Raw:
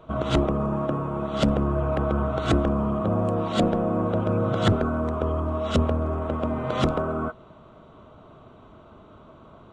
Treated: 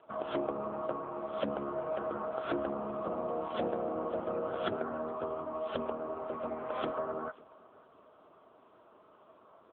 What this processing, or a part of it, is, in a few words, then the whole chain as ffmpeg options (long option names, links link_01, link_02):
satellite phone: -af "highpass=370,lowpass=3200,aecho=1:1:544:0.0631,volume=-6dB" -ar 8000 -c:a libopencore_amrnb -b:a 6700